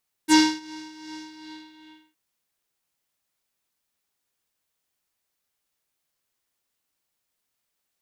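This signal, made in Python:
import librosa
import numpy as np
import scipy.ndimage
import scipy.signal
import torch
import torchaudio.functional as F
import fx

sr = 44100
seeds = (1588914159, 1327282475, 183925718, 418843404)

y = fx.sub_patch_tremolo(sr, seeds[0], note=63, wave='square', wave2='saw', interval_st=19, detune_cents=16, level2_db=-9.0, sub_db=-30.0, noise_db=-9.0, kind='lowpass', cutoff_hz=3000.0, q=2.9, env_oct=2.0, env_decay_s=0.06, env_sustain_pct=40, attack_ms=42.0, decay_s=0.28, sustain_db=-24, release_s=0.92, note_s=0.95, lfo_hz=2.6, tremolo_db=7.0)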